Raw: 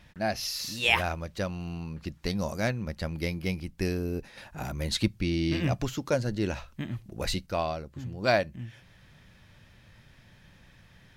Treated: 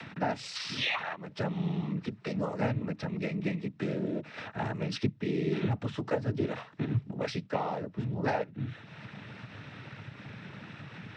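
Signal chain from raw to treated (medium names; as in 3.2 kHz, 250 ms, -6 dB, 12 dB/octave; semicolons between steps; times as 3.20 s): 0.55–1.16 s: high-order bell 1.9 kHz +12 dB 2.7 oct; compression 5:1, threshold -34 dBFS, peak gain reduction 24.5 dB; distance through air 290 m; noise-vocoded speech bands 12; upward compressor, threshold -44 dBFS; trim +7.5 dB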